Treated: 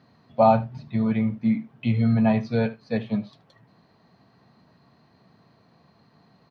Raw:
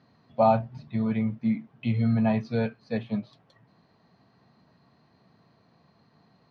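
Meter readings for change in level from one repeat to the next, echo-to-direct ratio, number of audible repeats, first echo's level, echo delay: repeats not evenly spaced, −19.0 dB, 1, −19.0 dB, 76 ms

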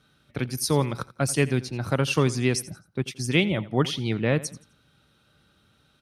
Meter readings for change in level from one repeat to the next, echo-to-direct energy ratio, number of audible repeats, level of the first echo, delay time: −10.0 dB, −17.5 dB, 2, −18.0 dB, 86 ms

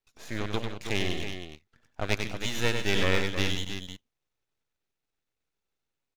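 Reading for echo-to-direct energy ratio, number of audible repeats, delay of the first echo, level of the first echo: −3.5 dB, 3, 97 ms, −6.0 dB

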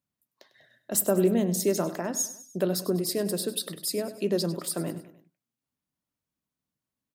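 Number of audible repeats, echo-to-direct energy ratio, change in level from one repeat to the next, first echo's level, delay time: 3, −13.5 dB, −6.0 dB, −14.5 dB, 99 ms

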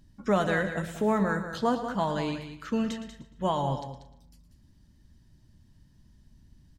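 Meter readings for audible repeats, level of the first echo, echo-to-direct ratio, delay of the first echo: 6, −13.0 dB, −8.0 dB, 114 ms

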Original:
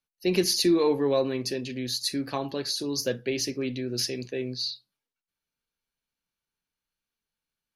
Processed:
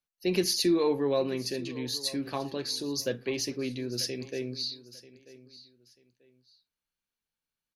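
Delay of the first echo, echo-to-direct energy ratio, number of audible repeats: 939 ms, −17.5 dB, 2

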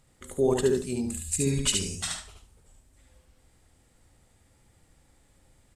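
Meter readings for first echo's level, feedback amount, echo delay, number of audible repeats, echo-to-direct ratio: −3.5 dB, 20%, 72 ms, 3, −3.5 dB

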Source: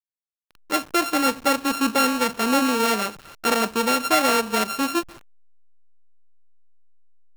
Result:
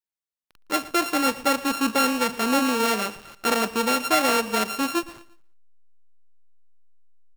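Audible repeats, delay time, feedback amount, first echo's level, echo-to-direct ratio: 2, 115 ms, 36%, −18.0 dB, −17.5 dB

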